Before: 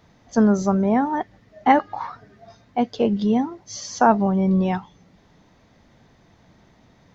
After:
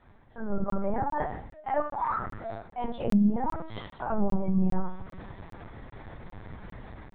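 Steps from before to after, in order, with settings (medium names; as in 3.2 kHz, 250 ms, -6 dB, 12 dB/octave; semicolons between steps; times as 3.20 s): dynamic bell 130 Hz, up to -5 dB, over -38 dBFS, Q 1.3; peak limiter -14.5 dBFS, peak gain reduction 11 dB; low-pass 1.3 kHz 6 dB/octave; peaking EQ 290 Hz -14.5 dB 1.8 oct; reverse; compression 10:1, threshold -43 dBFS, peak gain reduction 18 dB; reverse; reverberation RT60 0.60 s, pre-delay 5 ms, DRR -3 dB; LPC vocoder at 8 kHz pitch kept; low-pass that closes with the level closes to 1 kHz, closed at -30.5 dBFS; level rider gain up to 11 dB; crackling interface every 0.40 s, samples 1024, zero, from 0.70 s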